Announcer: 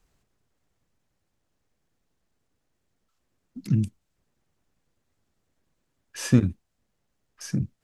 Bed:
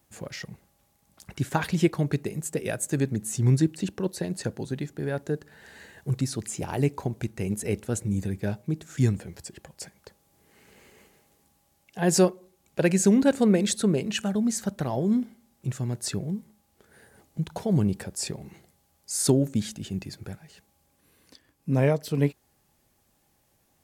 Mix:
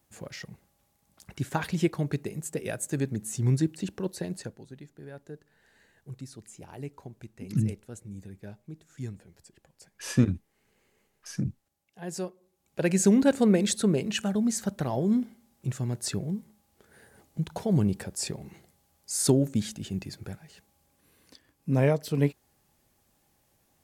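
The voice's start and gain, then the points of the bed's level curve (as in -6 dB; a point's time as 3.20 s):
3.85 s, -3.5 dB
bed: 4.34 s -3.5 dB
4.61 s -14.5 dB
12.30 s -14.5 dB
12.99 s -1 dB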